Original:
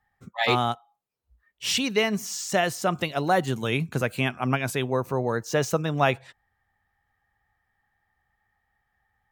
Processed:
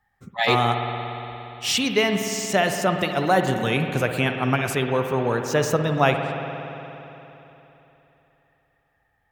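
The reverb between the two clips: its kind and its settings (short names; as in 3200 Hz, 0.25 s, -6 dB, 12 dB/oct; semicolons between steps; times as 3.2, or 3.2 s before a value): spring tank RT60 3.4 s, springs 58 ms, chirp 75 ms, DRR 5 dB; gain +2.5 dB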